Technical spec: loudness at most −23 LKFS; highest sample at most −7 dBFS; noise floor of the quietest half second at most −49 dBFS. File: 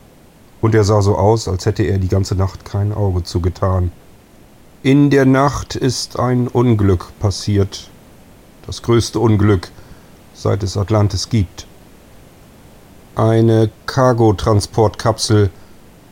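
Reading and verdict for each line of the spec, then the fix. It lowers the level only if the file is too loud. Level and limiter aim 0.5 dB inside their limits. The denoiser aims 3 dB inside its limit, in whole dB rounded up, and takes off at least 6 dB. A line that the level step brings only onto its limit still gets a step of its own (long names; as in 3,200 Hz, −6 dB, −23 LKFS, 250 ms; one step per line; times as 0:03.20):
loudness −15.5 LKFS: out of spec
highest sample −2.0 dBFS: out of spec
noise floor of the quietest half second −44 dBFS: out of spec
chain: level −8 dB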